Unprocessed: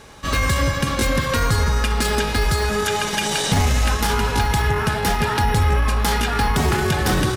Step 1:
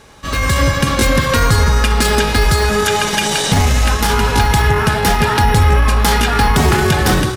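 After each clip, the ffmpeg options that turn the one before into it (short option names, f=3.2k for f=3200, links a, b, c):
-af "dynaudnorm=f=310:g=3:m=8dB"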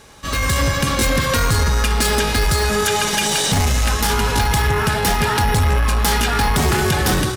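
-filter_complex "[0:a]highshelf=f=4.4k:g=5.5,asplit=2[a][b];[b]aeval=exprs='0.708*sin(PI/2*2*val(0)/0.708)':c=same,volume=-10dB[c];[a][c]amix=inputs=2:normalize=0,volume=-8.5dB"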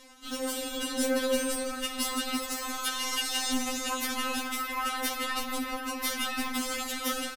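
-filter_complex "[0:a]areverse,acompressor=mode=upward:threshold=-25dB:ratio=2.5,areverse,asplit=2[a][b];[b]adelay=349.9,volume=-10dB,highshelf=f=4k:g=-7.87[c];[a][c]amix=inputs=2:normalize=0,afftfilt=real='re*3.46*eq(mod(b,12),0)':imag='im*3.46*eq(mod(b,12),0)':win_size=2048:overlap=0.75,volume=-8.5dB"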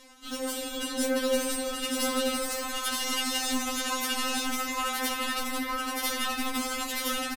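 -af "aecho=1:1:925:0.668"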